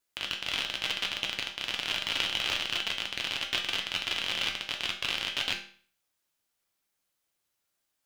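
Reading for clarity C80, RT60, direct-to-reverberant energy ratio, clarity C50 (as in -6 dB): 13.0 dB, 0.45 s, 1.5 dB, 9.0 dB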